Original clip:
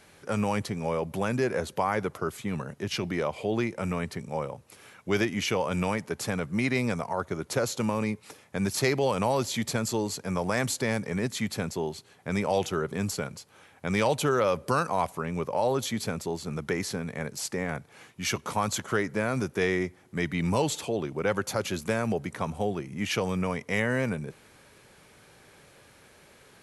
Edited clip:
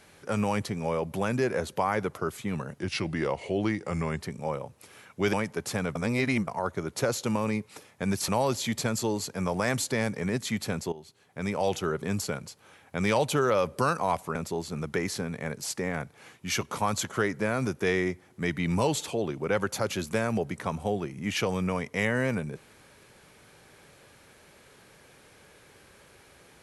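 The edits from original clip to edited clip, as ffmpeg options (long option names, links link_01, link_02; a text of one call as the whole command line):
ffmpeg -i in.wav -filter_complex "[0:a]asplit=9[link_01][link_02][link_03][link_04][link_05][link_06][link_07][link_08][link_09];[link_01]atrim=end=2.794[link_10];[link_02]atrim=start=2.79:end=4.09,asetpts=PTS-STARTPTS,asetrate=40572,aresample=44100,atrim=end_sample=62315,asetpts=PTS-STARTPTS[link_11];[link_03]atrim=start=4.086:end=5.222[link_12];[link_04]atrim=start=5.868:end=6.492[link_13];[link_05]atrim=start=6.488:end=7.012,asetpts=PTS-STARTPTS,areverse[link_14];[link_06]atrim=start=7.008:end=8.822[link_15];[link_07]atrim=start=9.178:end=11.82,asetpts=PTS-STARTPTS,afade=type=out:start_time=2.638:duration=0.004:curve=hsin:silence=0.158489[link_16];[link_08]atrim=start=11.82:end=15.252,asetpts=PTS-STARTPTS,afade=type=in:duration=1.15:curve=qsin:silence=0.158489[link_17];[link_09]atrim=start=16.098[link_18];[link_10][link_11]acrossfade=duration=0.004:curve1=hsin:curve2=hsin[link_19];[link_19][link_12]acrossfade=duration=0.004:curve1=hsin:curve2=hsin[link_20];[link_20][link_13]acrossfade=duration=0.004:curve1=hsin:curve2=hsin[link_21];[link_21][link_14]acrossfade=duration=0.004:curve1=hsin:curve2=hsin[link_22];[link_22][link_15]acrossfade=duration=0.004:curve1=hsin:curve2=hsin[link_23];[link_16][link_17]concat=n=2:v=0:a=1[link_24];[link_23][link_24]acrossfade=duration=0.004:curve1=hsin:curve2=hsin[link_25];[link_25][link_18]acrossfade=duration=0.004:curve1=hsin:curve2=hsin" out.wav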